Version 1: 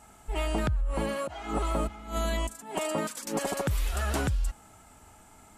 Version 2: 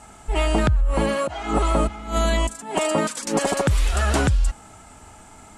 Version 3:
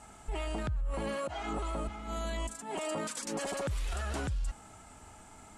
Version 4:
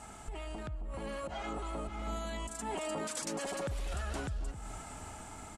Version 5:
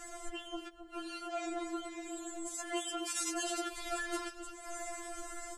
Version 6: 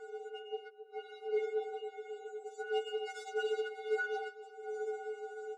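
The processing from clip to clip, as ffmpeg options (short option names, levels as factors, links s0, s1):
-af "lowpass=f=10000:w=0.5412,lowpass=f=10000:w=1.3066,volume=2.82"
-af "alimiter=limit=0.0944:level=0:latency=1:release=17,volume=0.422"
-filter_complex "[0:a]acompressor=threshold=0.00708:ratio=6,asplit=2[s0][s1];[s1]adelay=268,lowpass=f=810:p=1,volume=0.355,asplit=2[s2][s3];[s3]adelay=268,lowpass=f=810:p=1,volume=0.27,asplit=2[s4][s5];[s5]adelay=268,lowpass=f=810:p=1,volume=0.27[s6];[s2][s4][s6]amix=inputs=3:normalize=0[s7];[s0][s7]amix=inputs=2:normalize=0,dynaudnorm=f=250:g=11:m=1.58,volume=1.5"
-af "afftfilt=real='re*4*eq(mod(b,16),0)':imag='im*4*eq(mod(b,16),0)':win_size=2048:overlap=0.75,volume=2.11"
-af "adynamicsmooth=sensitivity=1.5:basefreq=1300,afreqshift=-260,afftfilt=real='re*eq(mod(floor(b*sr/1024/390),2),1)':imag='im*eq(mod(floor(b*sr/1024/390),2),1)':win_size=1024:overlap=0.75,volume=3.16"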